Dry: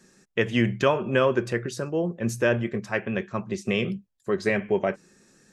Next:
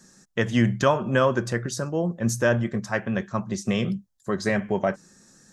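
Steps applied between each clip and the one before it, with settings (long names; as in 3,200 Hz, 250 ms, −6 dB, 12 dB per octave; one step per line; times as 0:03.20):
graphic EQ with 15 bands 400 Hz −8 dB, 2,500 Hz −10 dB, 6,300 Hz +4 dB
level +4 dB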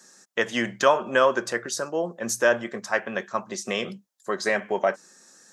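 high-pass filter 440 Hz 12 dB per octave
level +3 dB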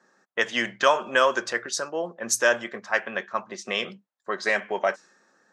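spectral tilt +2.5 dB per octave
low-pass that shuts in the quiet parts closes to 1,200 Hz, open at −16 dBFS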